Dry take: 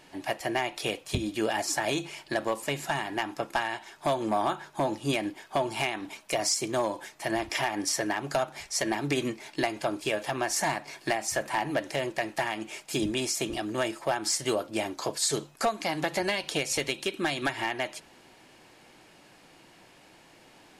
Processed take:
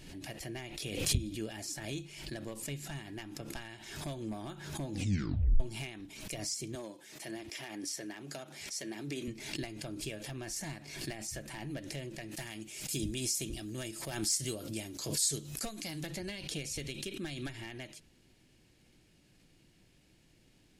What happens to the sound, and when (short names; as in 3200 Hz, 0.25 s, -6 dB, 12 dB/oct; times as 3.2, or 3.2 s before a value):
4.92 tape stop 0.68 s
6.75–9.28 HPF 240 Hz
12.31–16.07 high shelf 4600 Hz +10.5 dB
whole clip: passive tone stack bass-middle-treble 10-0-1; backwards sustainer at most 56 dB/s; gain +10.5 dB